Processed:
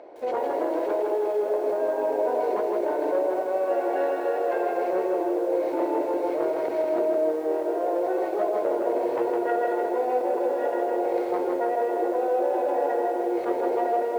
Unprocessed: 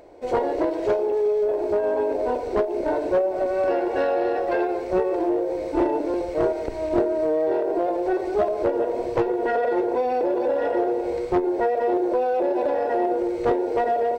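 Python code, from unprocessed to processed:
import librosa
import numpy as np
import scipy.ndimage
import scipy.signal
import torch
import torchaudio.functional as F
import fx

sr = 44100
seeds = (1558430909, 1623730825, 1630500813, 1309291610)

p1 = fx.high_shelf(x, sr, hz=2200.0, db=-8.5)
p2 = fx.hum_notches(p1, sr, base_hz=60, count=8)
p3 = fx.over_compress(p2, sr, threshold_db=-29.0, ratio=-0.5)
p4 = p2 + (p3 * 10.0 ** (0.0 / 20.0))
p5 = fx.bandpass_edges(p4, sr, low_hz=350.0, high_hz=4400.0)
p6 = p5 + fx.echo_diffused(p5, sr, ms=1096, feedback_pct=51, wet_db=-16.0, dry=0)
p7 = fx.echo_crushed(p6, sr, ms=159, feedback_pct=55, bits=8, wet_db=-4.0)
y = p7 * 10.0 ** (-4.5 / 20.0)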